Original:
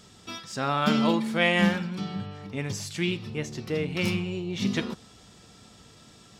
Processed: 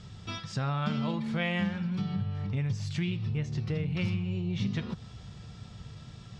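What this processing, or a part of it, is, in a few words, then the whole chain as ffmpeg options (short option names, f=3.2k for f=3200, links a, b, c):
jukebox: -af "lowpass=5k,lowshelf=f=190:t=q:w=1.5:g=11,acompressor=threshold=-29dB:ratio=4"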